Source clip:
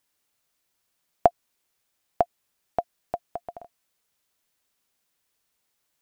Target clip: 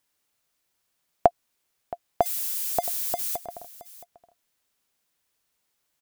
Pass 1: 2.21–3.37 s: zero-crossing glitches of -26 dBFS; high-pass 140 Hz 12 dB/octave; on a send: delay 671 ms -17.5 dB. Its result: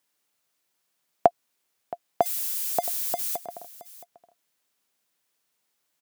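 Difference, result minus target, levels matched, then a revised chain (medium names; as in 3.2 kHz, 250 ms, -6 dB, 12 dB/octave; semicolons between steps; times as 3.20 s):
125 Hz band -4.0 dB
2.21–3.37 s: zero-crossing glitches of -26 dBFS; on a send: delay 671 ms -17.5 dB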